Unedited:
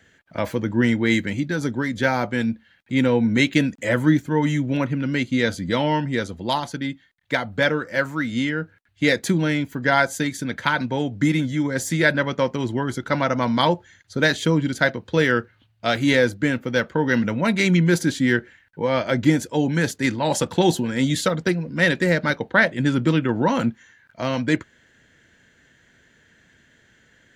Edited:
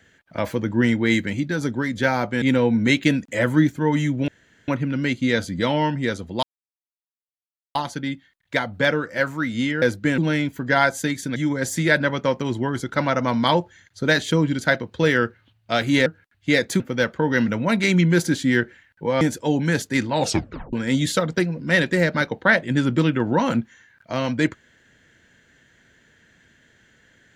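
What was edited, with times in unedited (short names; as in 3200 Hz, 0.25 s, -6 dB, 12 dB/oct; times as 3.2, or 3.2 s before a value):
2.42–2.92 cut
4.78 insert room tone 0.40 s
6.53 insert silence 1.32 s
8.6–9.34 swap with 16.2–16.56
10.52–11.5 cut
18.97–19.3 cut
20.28 tape stop 0.54 s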